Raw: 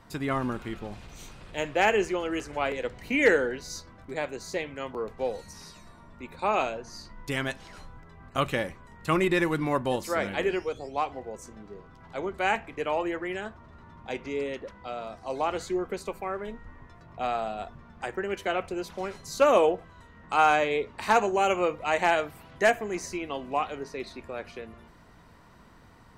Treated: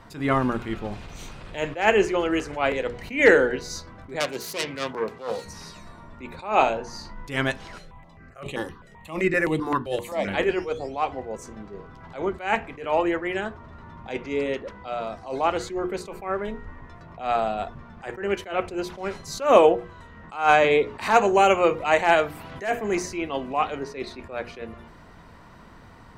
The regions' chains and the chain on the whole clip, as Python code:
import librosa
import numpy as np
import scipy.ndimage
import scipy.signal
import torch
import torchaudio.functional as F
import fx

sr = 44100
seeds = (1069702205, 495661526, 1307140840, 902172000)

y = fx.chain(x, sr, fx.self_delay(depth_ms=0.36),
    fx.highpass(hz=99.0, slope=24),
    fx.high_shelf(hz=2500.0, db=7.0), at=(4.2, 5.45))
y = fx.chain(y, sr, fx.peak_eq(hz=860.0, db=8.5, octaves=0.27),
    fx.doubler(ms=35.0, db=-14), at=(6.55, 7.14))
y = fx.chain(y, sr, fx.low_shelf(hz=150.0, db=-6.5),
    fx.phaser_held(hz=7.7, low_hz=260.0, high_hz=5300.0), at=(7.78, 10.28))
y = fx.chain(y, sr, fx.high_shelf(hz=10000.0, db=4.0),
    fx.band_squash(depth_pct=40), at=(20.64, 23.03))
y = fx.high_shelf(y, sr, hz=5900.0, db=-7.0)
y = fx.hum_notches(y, sr, base_hz=60, count=8)
y = fx.attack_slew(y, sr, db_per_s=150.0)
y = y * librosa.db_to_amplitude(7.0)